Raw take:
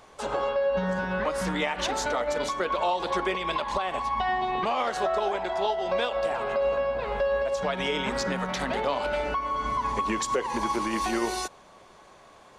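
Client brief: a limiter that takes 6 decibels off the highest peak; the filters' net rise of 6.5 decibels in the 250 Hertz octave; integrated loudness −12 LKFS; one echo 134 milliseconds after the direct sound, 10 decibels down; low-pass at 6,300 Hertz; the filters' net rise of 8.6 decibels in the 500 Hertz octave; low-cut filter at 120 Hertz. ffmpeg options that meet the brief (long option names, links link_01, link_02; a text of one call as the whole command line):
ffmpeg -i in.wav -af "highpass=120,lowpass=6300,equalizer=frequency=250:width_type=o:gain=6,equalizer=frequency=500:width_type=o:gain=9,alimiter=limit=-13.5dB:level=0:latency=1,aecho=1:1:134:0.316,volume=10.5dB" out.wav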